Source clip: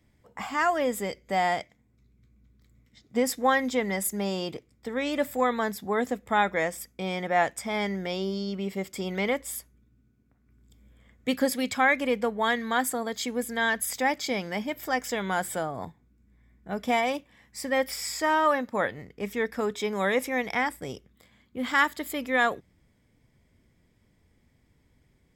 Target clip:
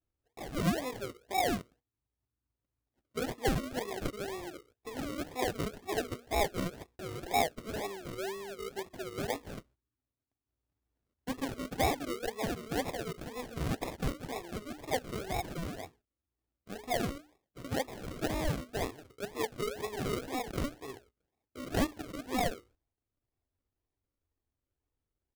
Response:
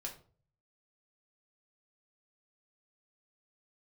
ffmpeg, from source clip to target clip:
-filter_complex "[0:a]asettb=1/sr,asplit=3[s0][s1][s2];[s0]atrim=end=12.074[s3];[s1]atrim=start=12.07:end=12.78,asetpts=PTS-STARTPTS,afade=t=in:d=0.004:c=qsin,afade=t=out:st=0.706:d=0.004:c=qsin,highshelf=f=2200:g=-9[s4];[s2]atrim=start=12.776[s5];[s3][s4]acrossfade=d=0.004:c1=hsin:c2=qsin[s6];[s6][s5]acrossfade=d=0.004:c1=qsin:c2=hsin,asettb=1/sr,asplit=3[s7][s8][s9];[s7]atrim=end=15.864[s10];[s8]atrim=start=15.86:end=17.6,asetpts=PTS-STARTPTS,afade=t=in:d=0.004:c=qsin,afade=t=out:st=1.736:d=0.004:c=qsin,tremolo=f=270:d=0.261[s11];[s9]atrim=start=17.596[s12];[s10][s11]acrossfade=d=0.004:c1=hsin:c2=qsin[s13];[s13][s12]acrossfade=d=0.004:c1=qsin:c2=hsin,equalizer=f=200:w=1.9:g=-5,bandreject=f=60:t=h:w=6,bandreject=f=120:t=h:w=6,bandreject=f=180:t=h:w=6,bandreject=f=240:t=h:w=6,bandreject=f=300:t=h:w=6,bandreject=f=360:t=h:w=6,bandreject=f=420:t=h:w=6,bandreject=f=480:t=h:w=6,agate=range=0.178:threshold=0.00224:ratio=16:detection=peak,asuperstop=centerf=4100:order=20:qfactor=2,aecho=1:1:2.7:0.75,acrusher=samples=41:mix=1:aa=0.000001:lfo=1:lforange=24.6:lforate=2,volume=0.376"

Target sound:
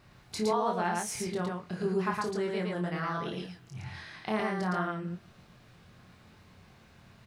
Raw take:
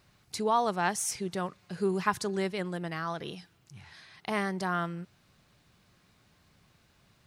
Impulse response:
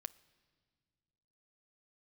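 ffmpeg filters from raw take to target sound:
-filter_complex "[0:a]highshelf=f=3600:g=-9,acompressor=threshold=0.00708:ratio=2,aecho=1:1:32.07|113.7:0.447|0.794,asplit=2[s0][s1];[1:a]atrim=start_sample=2205,adelay=23[s2];[s1][s2]afir=irnorm=-1:irlink=0,volume=0.944[s3];[s0][s3]amix=inputs=2:normalize=0,volume=1.78"

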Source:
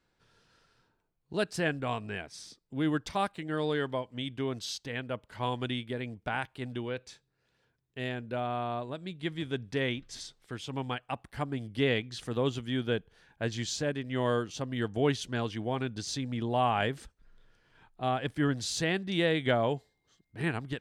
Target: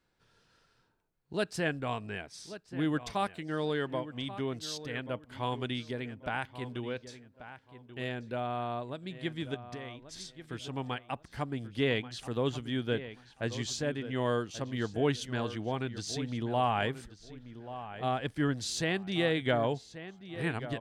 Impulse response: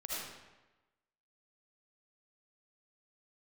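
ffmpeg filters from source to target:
-filter_complex "[0:a]asettb=1/sr,asplit=3[s0][s1][s2];[s0]atrim=end=9.544[s3];[s1]atrim=start=9.54:end=10.18,asetpts=PTS-STARTPTS,afade=t=in:d=0.004:c=qsin,afade=t=out:st=0.636:d=0.004:c=qsin,acompressor=threshold=0.01:ratio=6[s4];[s2]atrim=start=10.176[s5];[s3][s4]acrossfade=d=0.004:c1=hsin:c2=qsin[s6];[s6][s5]acrossfade=d=0.004:c1=qsin:c2=hsin,asplit=2[s7][s8];[s8]adelay=1135,lowpass=f=3100:p=1,volume=0.224,asplit=2[s9][s10];[s10]adelay=1135,lowpass=f=3100:p=1,volume=0.24,asplit=2[s11][s12];[s12]adelay=1135,lowpass=f=3100:p=1,volume=0.24[s13];[s7][s9][s11][s13]amix=inputs=4:normalize=0,volume=0.841"

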